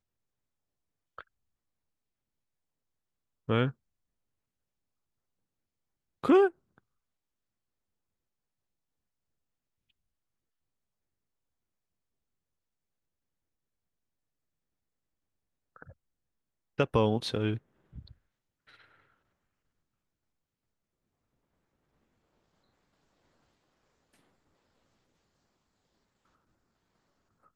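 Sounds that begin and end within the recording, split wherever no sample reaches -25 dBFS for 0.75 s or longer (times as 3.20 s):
3.50–3.67 s
6.24–6.47 s
16.80–17.53 s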